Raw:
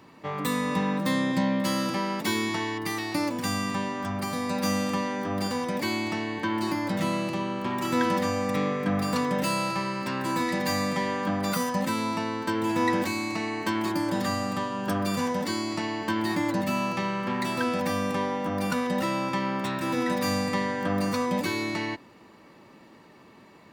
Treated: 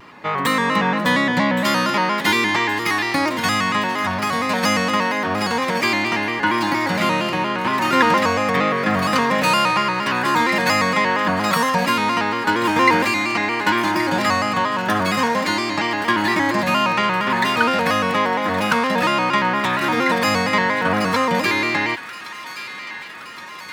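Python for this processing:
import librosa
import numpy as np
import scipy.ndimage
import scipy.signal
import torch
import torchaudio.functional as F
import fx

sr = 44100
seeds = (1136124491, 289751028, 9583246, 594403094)

y = fx.peak_eq(x, sr, hz=1700.0, db=10.5, octaves=2.7)
y = fx.echo_wet_highpass(y, sr, ms=1122, feedback_pct=73, hz=1700.0, wet_db=-11.5)
y = fx.vibrato_shape(y, sr, shape='square', rate_hz=4.3, depth_cents=100.0)
y = y * 10.0 ** (3.5 / 20.0)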